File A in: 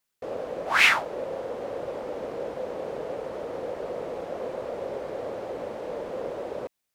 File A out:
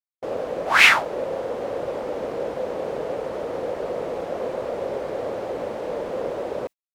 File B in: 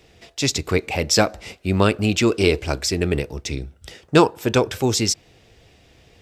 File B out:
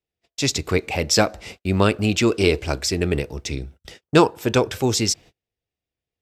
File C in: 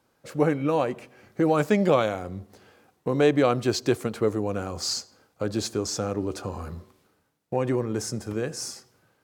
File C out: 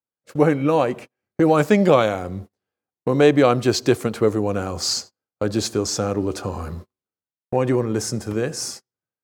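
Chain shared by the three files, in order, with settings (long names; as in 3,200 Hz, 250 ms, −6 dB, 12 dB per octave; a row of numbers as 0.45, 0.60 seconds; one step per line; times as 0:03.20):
noise gate −40 dBFS, range −36 dB
normalise the peak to −1.5 dBFS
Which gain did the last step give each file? +5.0, −0.5, +5.5 decibels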